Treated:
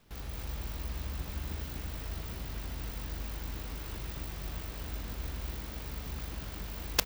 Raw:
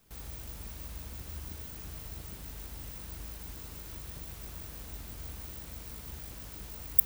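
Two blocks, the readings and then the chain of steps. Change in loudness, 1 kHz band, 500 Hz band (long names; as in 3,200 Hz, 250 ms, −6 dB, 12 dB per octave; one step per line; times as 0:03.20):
+1.0 dB, +7.5 dB, +7.5 dB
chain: running median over 5 samples
single-tap delay 244 ms −3.5 dB
level +4 dB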